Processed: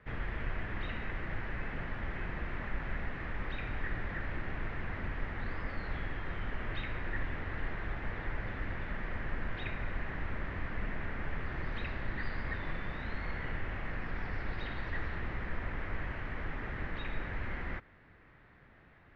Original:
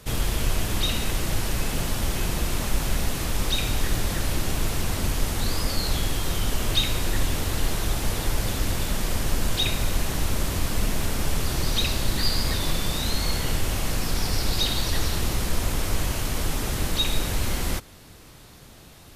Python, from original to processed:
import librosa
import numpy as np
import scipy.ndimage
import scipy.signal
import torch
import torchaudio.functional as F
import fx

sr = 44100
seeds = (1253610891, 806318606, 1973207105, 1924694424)

y = fx.ladder_lowpass(x, sr, hz=2100.0, resonance_pct=60)
y = y * 10.0 ** (-2.0 / 20.0)